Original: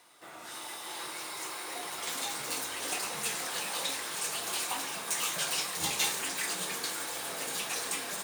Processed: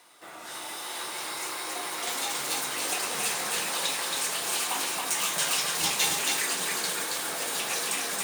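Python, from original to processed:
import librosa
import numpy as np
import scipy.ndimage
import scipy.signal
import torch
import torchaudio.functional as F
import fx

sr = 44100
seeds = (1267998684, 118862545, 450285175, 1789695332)

p1 = fx.highpass(x, sr, hz=140.0, slope=6)
p2 = p1 + fx.echo_single(p1, sr, ms=275, db=-3.0, dry=0)
y = p2 * 10.0 ** (3.5 / 20.0)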